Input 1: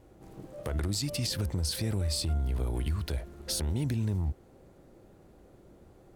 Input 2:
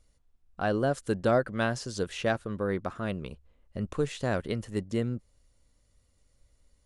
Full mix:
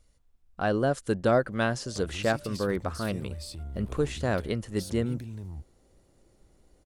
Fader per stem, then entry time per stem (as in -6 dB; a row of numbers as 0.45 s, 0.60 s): -9.5 dB, +1.5 dB; 1.30 s, 0.00 s